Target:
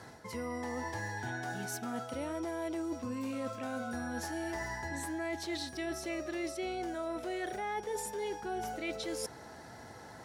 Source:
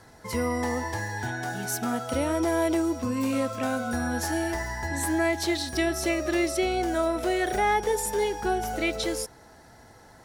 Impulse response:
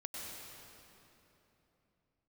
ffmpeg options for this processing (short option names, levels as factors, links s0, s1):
-af "highpass=88,highshelf=f=10000:g=-8,areverse,acompressor=threshold=0.0112:ratio=5,areverse,volume=1.33"